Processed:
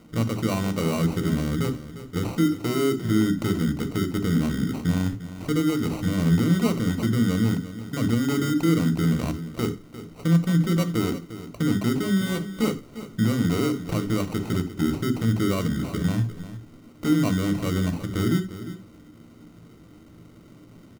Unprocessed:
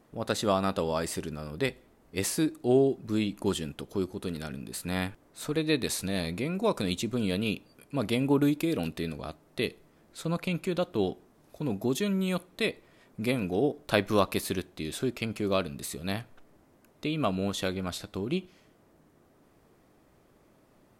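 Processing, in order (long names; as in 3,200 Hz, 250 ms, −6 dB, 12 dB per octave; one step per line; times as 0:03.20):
tilt shelving filter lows +7.5 dB, about 750 Hz
downward compressor, threshold −24 dBFS, peak gain reduction 10.5 dB
brickwall limiter −23 dBFS, peak gain reduction 10.5 dB
decimation without filtering 26×
0:12.20–0:13.20: double-tracking delay 14 ms −4.5 dB
single-tap delay 351 ms −13.5 dB
on a send at −11 dB: convolution reverb, pre-delay 3 ms
on the sum: level +4.5 dB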